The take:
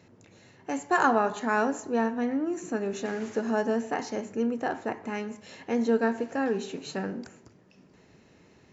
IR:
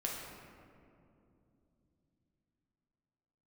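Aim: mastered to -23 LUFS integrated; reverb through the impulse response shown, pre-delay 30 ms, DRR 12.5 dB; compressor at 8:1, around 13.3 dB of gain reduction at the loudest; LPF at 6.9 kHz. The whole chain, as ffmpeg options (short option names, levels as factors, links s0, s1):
-filter_complex "[0:a]lowpass=6900,acompressor=threshold=0.0251:ratio=8,asplit=2[s0][s1];[1:a]atrim=start_sample=2205,adelay=30[s2];[s1][s2]afir=irnorm=-1:irlink=0,volume=0.178[s3];[s0][s3]amix=inputs=2:normalize=0,volume=5.01"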